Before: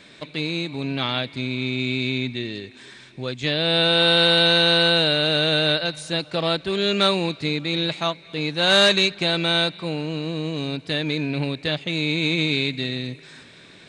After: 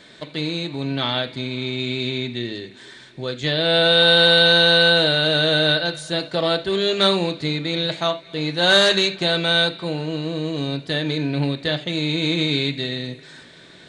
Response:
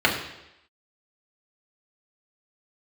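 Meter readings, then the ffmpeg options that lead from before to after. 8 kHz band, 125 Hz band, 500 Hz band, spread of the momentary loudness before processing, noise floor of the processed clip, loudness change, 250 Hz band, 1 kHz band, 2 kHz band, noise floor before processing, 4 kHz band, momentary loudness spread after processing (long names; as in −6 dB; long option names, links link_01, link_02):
+1.0 dB, +1.5 dB, +3.0 dB, 13 LU, −46 dBFS, +2.0 dB, +1.0 dB, +1.0 dB, +3.0 dB, −47 dBFS, +2.0 dB, 14 LU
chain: -filter_complex "[0:a]asplit=2[link_01][link_02];[link_02]highshelf=frequency=6000:gain=10[link_03];[1:a]atrim=start_sample=2205,afade=type=out:start_time=0.14:duration=0.01,atrim=end_sample=6615[link_04];[link_03][link_04]afir=irnorm=-1:irlink=0,volume=-23.5dB[link_05];[link_01][link_05]amix=inputs=2:normalize=0"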